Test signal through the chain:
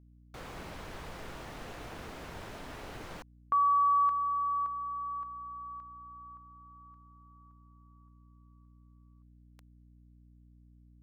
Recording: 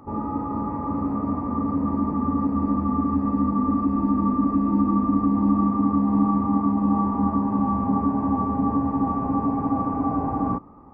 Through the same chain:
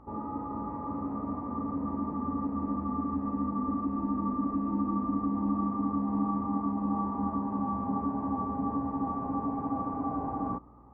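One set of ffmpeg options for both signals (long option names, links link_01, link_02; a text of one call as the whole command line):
ffmpeg -i in.wav -af "lowpass=frequency=1200:poles=1,lowshelf=frequency=390:gain=-7.5,aeval=exprs='val(0)+0.00224*(sin(2*PI*60*n/s)+sin(2*PI*2*60*n/s)/2+sin(2*PI*3*60*n/s)/3+sin(2*PI*4*60*n/s)/4+sin(2*PI*5*60*n/s)/5)':channel_layout=same,volume=-4dB" out.wav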